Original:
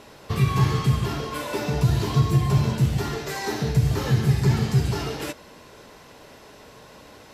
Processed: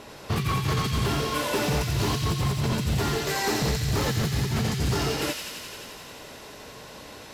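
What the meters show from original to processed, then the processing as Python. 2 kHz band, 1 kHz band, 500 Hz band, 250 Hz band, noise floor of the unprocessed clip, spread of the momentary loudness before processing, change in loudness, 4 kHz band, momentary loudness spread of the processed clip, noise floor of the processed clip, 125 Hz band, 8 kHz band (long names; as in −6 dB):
+2.5 dB, +1.0 dB, 0.0 dB, −2.5 dB, −48 dBFS, 9 LU, −3.0 dB, +4.5 dB, 17 LU, −44 dBFS, −6.0 dB, +5.0 dB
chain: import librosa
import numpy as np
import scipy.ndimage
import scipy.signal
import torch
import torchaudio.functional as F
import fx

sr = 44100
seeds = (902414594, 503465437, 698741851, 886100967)

y = fx.over_compress(x, sr, threshold_db=-24.0, ratio=-1.0)
y = 10.0 ** (-19.0 / 20.0) * (np.abs((y / 10.0 ** (-19.0 / 20.0) + 3.0) % 4.0 - 2.0) - 1.0)
y = fx.echo_wet_highpass(y, sr, ms=87, feedback_pct=82, hz=2300.0, wet_db=-3.5)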